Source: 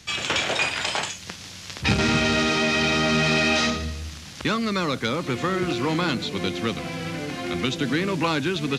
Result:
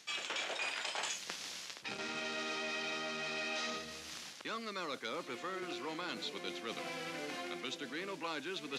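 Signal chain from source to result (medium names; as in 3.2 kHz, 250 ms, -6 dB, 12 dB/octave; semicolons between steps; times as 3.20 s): reverse; compression 10:1, threshold -31 dBFS, peak gain reduction 15 dB; reverse; high-pass 370 Hz 12 dB/octave; trim -4.5 dB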